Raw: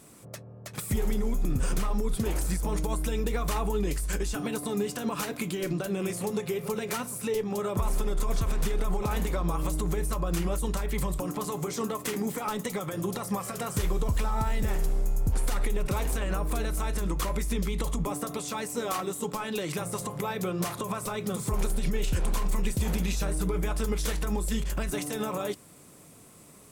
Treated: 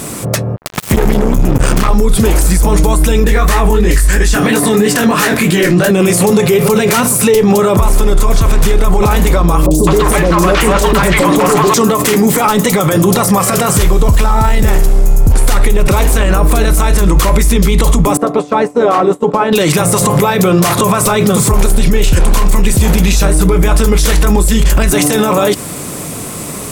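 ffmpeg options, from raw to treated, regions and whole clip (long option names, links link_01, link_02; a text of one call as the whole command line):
ffmpeg -i in.wav -filter_complex "[0:a]asettb=1/sr,asplit=3[link_01][link_02][link_03];[link_01]atrim=end=0.564[link_04];[link_02]atrim=start=0.56:end=1.89,asetpts=PTS-STARTPTS,afade=type=in:duration=0.004:curve=qsin,afade=type=out:start_time=1.326:duration=0.004:curve=qsin,equalizer=frequency=11000:width=0.38:gain=-5.5,acompressor=threshold=-42dB:ratio=2.5:attack=3.2:release=140:knee=1:detection=peak,acrusher=bits=5:mix=0:aa=0.5[link_05];[link_03]atrim=start=1.886[link_06];[link_04][link_05]acrossfade=duration=0.004:curve1=hsin:curve2=qsin[link_07];[link_07][link_06]acrossfade=duration=0.004:curve1=qsin:curve2=hsin,asettb=1/sr,asplit=3[link_08][link_09][link_10];[link_08]atrim=end=3.244[link_11];[link_09]atrim=start=3.24:end=5.91,asetpts=PTS-STARTPTS,afade=type=in:duration=0.004:curve=qsin,afade=type=out:start_time=2.666:duration=0.004:curve=qsin,flanger=delay=16.5:depth=6.3:speed=3,equalizer=frequency=1800:width=3.9:gain=9.5[link_12];[link_10]atrim=start=5.906[link_13];[link_11][link_12]acrossfade=duration=0.004:curve1=hsin:curve2=qsin[link_14];[link_14][link_13]acrossfade=duration=0.004:curve1=qsin:curve2=hsin,asettb=1/sr,asplit=3[link_15][link_16][link_17];[link_15]atrim=end=9.664[link_18];[link_16]atrim=start=9.66:end=11.74,asetpts=PTS-STARTPTS,afade=type=in:duration=0.004:curve=qsin,afade=type=out:start_time=2.076:duration=0.004:curve=qsin,asplit=2[link_19][link_20];[link_20]highpass=frequency=720:poles=1,volume=22dB,asoftclip=type=tanh:threshold=-17.5dB[link_21];[link_19][link_21]amix=inputs=2:normalize=0,lowpass=frequency=2300:poles=1,volume=-6dB,acrossover=split=580|5000[link_22][link_23][link_24];[link_24]adelay=50[link_25];[link_23]adelay=210[link_26];[link_22][link_26][link_25]amix=inputs=3:normalize=0,atrim=end_sample=91728[link_27];[link_17]atrim=start=11.736[link_28];[link_18][link_27]acrossfade=duration=0.004:curve1=hsin:curve2=qsin[link_29];[link_29][link_28]acrossfade=duration=0.004:curve1=qsin:curve2=hsin,asettb=1/sr,asplit=3[link_30][link_31][link_32];[link_30]atrim=end=18.174[link_33];[link_31]atrim=start=18.17:end=19.53,asetpts=PTS-STARTPTS,afade=type=in:duration=0.004:curve=qsin,afade=type=out:start_time=1.356:duration=0.004:curve=qsin,bandpass=frequency=500:width_type=q:width=0.73,agate=range=-33dB:threshold=-35dB:ratio=3:release=100:detection=peak[link_34];[link_32]atrim=start=19.526[link_35];[link_33][link_34]acrossfade=duration=0.004:curve1=hsin:curve2=qsin[link_36];[link_36][link_35]acrossfade=duration=0.004:curve1=qsin:curve2=hsin,acontrast=88,alimiter=level_in=23.5dB:limit=-1dB:release=50:level=0:latency=1,volume=-1dB" out.wav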